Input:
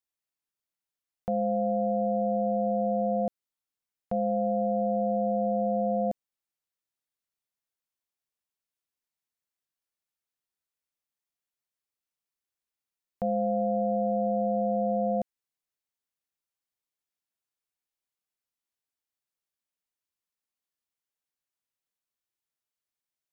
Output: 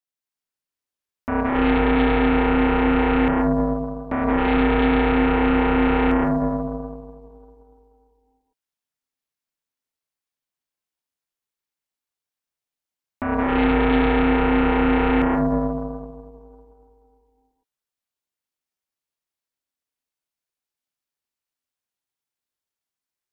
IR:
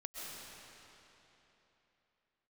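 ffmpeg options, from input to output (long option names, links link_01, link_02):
-filter_complex "[1:a]atrim=start_sample=2205[link_01];[0:a][link_01]afir=irnorm=-1:irlink=0,aeval=exprs='0.133*(cos(1*acos(clip(val(0)/0.133,-1,1)))-cos(1*PI/2))+0.0596*(cos(8*acos(clip(val(0)/0.133,-1,1)))-cos(8*PI/2))':channel_layout=same,aeval=exprs='val(0)*sin(2*PI*260*n/s)':channel_layout=same,volume=6dB"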